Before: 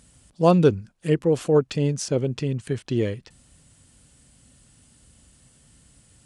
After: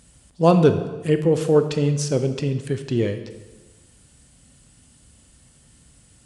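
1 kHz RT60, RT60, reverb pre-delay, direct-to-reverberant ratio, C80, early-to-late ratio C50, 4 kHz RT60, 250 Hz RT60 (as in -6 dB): 1.2 s, 1.2 s, 19 ms, 8.0 dB, 12.0 dB, 10.0 dB, 1.0 s, 1.3 s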